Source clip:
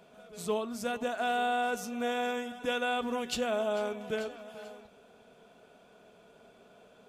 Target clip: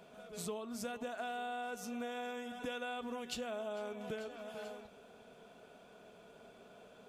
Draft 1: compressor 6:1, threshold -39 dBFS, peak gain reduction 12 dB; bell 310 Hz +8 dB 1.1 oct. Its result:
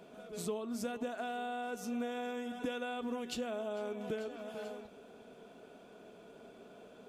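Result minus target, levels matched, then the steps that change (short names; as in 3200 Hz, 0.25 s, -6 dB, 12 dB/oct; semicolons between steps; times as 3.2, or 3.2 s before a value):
250 Hz band +2.5 dB
remove: bell 310 Hz +8 dB 1.1 oct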